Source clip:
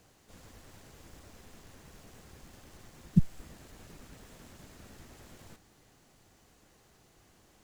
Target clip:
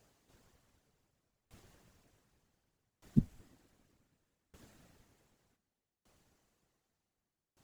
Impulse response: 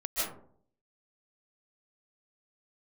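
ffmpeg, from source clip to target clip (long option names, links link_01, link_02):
-af "afftfilt=real='hypot(re,im)*cos(2*PI*random(0))':imag='hypot(re,im)*sin(2*PI*random(1))':win_size=512:overlap=0.75,adynamicequalizer=threshold=0.001:dfrequency=250:dqfactor=2.7:tfrequency=250:tqfactor=2.7:attack=5:release=100:ratio=0.375:range=3:mode=boostabove:tftype=bell,aeval=exprs='val(0)*pow(10,-27*if(lt(mod(0.66*n/s,1),2*abs(0.66)/1000),1-mod(0.66*n/s,1)/(2*abs(0.66)/1000),(mod(0.66*n/s,1)-2*abs(0.66)/1000)/(1-2*abs(0.66)/1000))/20)':channel_layout=same"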